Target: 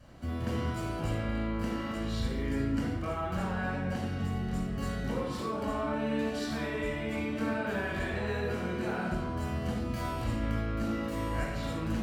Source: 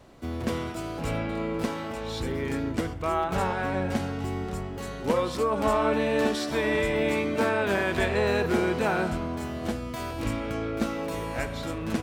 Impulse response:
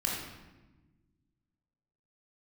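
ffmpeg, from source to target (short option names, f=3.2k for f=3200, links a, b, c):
-filter_complex "[0:a]acompressor=threshold=-30dB:ratio=6[a];[1:a]atrim=start_sample=2205,afade=t=out:st=0.34:d=0.01,atrim=end_sample=15435,asetrate=43659,aresample=44100[b];[a][b]afir=irnorm=-1:irlink=0,volume=-7dB"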